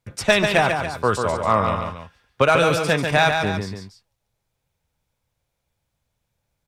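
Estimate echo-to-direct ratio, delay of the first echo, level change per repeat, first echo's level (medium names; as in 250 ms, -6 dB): -4.5 dB, 142 ms, -6.0 dB, -5.5 dB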